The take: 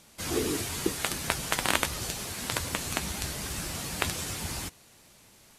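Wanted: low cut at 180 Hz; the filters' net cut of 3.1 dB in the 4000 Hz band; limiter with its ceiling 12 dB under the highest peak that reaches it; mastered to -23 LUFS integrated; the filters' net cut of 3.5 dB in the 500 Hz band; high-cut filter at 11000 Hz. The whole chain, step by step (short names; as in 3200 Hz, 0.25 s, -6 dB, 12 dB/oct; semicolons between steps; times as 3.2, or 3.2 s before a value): HPF 180 Hz; LPF 11000 Hz; bell 500 Hz -4.5 dB; bell 4000 Hz -4 dB; gain +12 dB; limiter -4 dBFS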